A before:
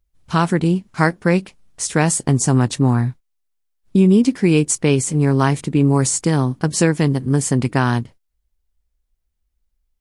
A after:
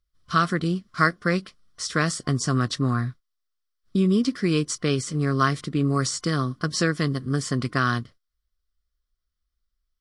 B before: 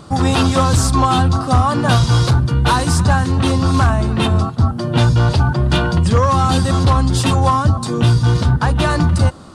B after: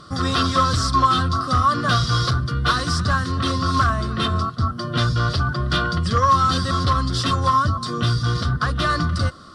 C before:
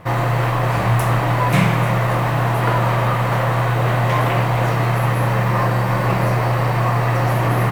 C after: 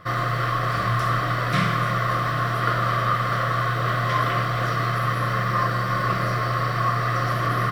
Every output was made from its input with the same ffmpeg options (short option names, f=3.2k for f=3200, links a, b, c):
-filter_complex "[0:a]acrossover=split=7800[a][b];[b]acompressor=threshold=-38dB:ratio=4:attack=1:release=60[c];[a][c]amix=inputs=2:normalize=0,superequalizer=9b=0.316:10b=3.16:11b=2:13b=2.24:14b=2.82,volume=-8dB"